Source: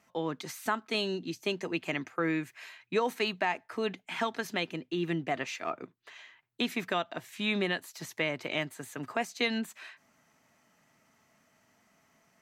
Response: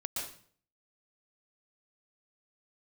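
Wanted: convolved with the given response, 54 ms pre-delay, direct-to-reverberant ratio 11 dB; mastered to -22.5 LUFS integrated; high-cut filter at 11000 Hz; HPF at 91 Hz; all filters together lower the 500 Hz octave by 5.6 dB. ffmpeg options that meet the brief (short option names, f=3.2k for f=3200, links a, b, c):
-filter_complex "[0:a]highpass=91,lowpass=11k,equalizer=f=500:t=o:g=-7.5,asplit=2[a][b];[1:a]atrim=start_sample=2205,adelay=54[c];[b][c]afir=irnorm=-1:irlink=0,volume=-13dB[d];[a][d]amix=inputs=2:normalize=0,volume=12dB"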